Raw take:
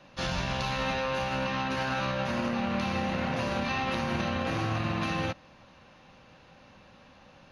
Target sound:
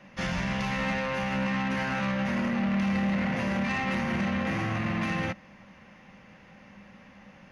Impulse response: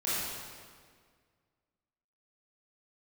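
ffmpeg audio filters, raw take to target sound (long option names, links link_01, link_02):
-af "equalizer=frequency=200:width_type=o:width=0.33:gain=12,equalizer=frequency=2000:width_type=o:width=0.33:gain=11,equalizer=frequency=4000:width_type=o:width=0.33:gain=-9,asoftclip=type=tanh:threshold=-22dB"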